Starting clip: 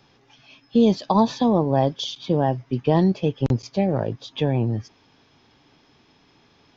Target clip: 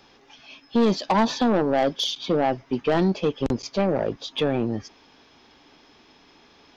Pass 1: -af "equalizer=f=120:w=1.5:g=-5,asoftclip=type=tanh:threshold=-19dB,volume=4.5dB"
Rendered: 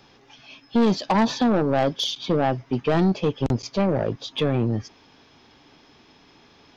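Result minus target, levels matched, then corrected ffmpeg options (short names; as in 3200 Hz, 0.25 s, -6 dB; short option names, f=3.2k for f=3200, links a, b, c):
125 Hz band +4.5 dB
-af "equalizer=f=120:w=1.5:g=-13.5,asoftclip=type=tanh:threshold=-19dB,volume=4.5dB"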